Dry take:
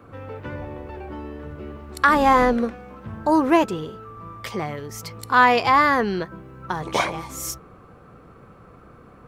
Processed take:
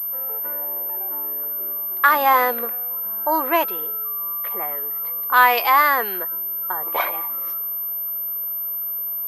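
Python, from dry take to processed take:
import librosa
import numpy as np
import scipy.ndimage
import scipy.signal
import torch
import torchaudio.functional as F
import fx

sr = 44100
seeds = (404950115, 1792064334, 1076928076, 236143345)

y = scipy.signal.sosfilt(scipy.signal.butter(2, 660.0, 'highpass', fs=sr, output='sos'), x)
y = fx.env_lowpass(y, sr, base_hz=1100.0, full_db=-13.5)
y = fx.high_shelf(y, sr, hz=2800.0, db=-8.0, at=(6.17, 7.07))
y = fx.pwm(y, sr, carrier_hz=13000.0)
y = y * librosa.db_to_amplitude(2.0)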